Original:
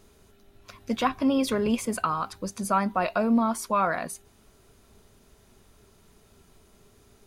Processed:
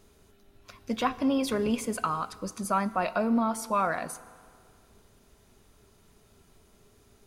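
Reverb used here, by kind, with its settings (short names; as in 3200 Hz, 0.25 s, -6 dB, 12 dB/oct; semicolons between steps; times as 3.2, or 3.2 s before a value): FDN reverb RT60 2.1 s, low-frequency decay 0.9×, high-frequency decay 0.8×, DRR 15 dB; gain -2.5 dB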